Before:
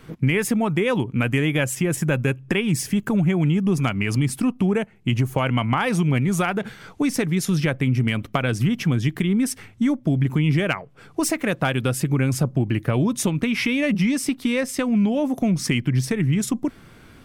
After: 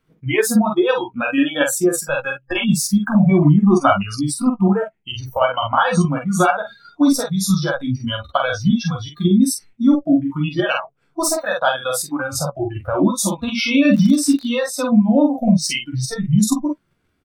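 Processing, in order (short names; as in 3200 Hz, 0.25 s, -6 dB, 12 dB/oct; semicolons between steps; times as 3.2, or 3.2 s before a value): doubler 14 ms -8 dB; on a send: early reflections 11 ms -9 dB, 47 ms -3 dB; on the sum: spectral noise reduction 27 dB; 3.45–4.02 spectral gain 230–2200 Hz +7 dB; in parallel at +1.5 dB: level quantiser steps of 10 dB; 13.93–14.46 on the sum: crackle 110/s -25 dBFS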